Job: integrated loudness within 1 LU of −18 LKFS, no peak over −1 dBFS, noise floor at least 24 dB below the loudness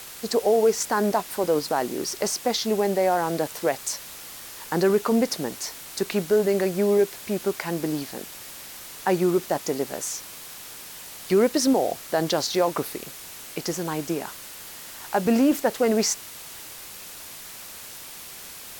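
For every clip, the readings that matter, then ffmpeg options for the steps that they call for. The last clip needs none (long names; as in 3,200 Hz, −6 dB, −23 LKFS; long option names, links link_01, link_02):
background noise floor −41 dBFS; target noise floor −49 dBFS; integrated loudness −24.5 LKFS; sample peak −10.0 dBFS; target loudness −18.0 LKFS
→ -af "afftdn=noise_reduction=8:noise_floor=-41"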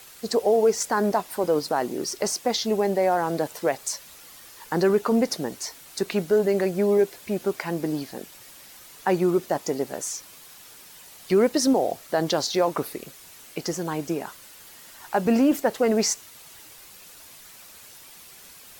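background noise floor −47 dBFS; target noise floor −49 dBFS
→ -af "afftdn=noise_reduction=6:noise_floor=-47"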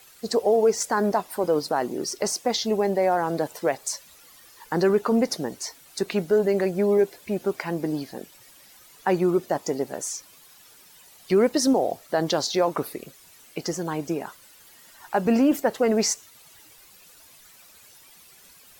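background noise floor −52 dBFS; integrated loudness −24.5 LKFS; sample peak −10.0 dBFS; target loudness −18.0 LKFS
→ -af "volume=6.5dB"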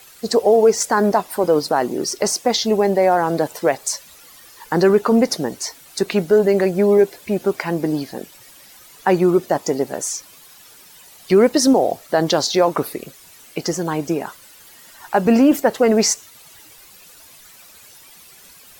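integrated loudness −18.0 LKFS; sample peak −3.5 dBFS; background noise floor −46 dBFS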